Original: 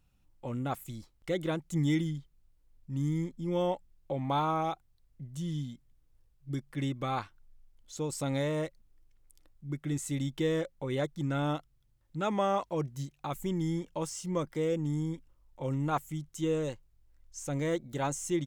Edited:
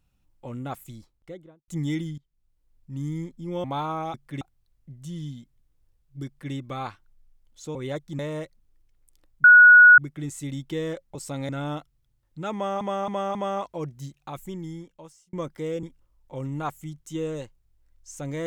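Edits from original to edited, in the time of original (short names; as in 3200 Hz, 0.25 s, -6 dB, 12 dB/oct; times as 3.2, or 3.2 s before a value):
0.85–1.68 studio fade out
2.18–2.98 fade in equal-power, from -20.5 dB
3.64–4.23 cut
6.58–6.85 copy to 4.73
8.07–8.41 swap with 10.83–11.27
9.66 add tone 1460 Hz -7.5 dBFS 0.54 s
12.32–12.59 loop, 4 plays
13.19–14.3 fade out
14.8–15.11 cut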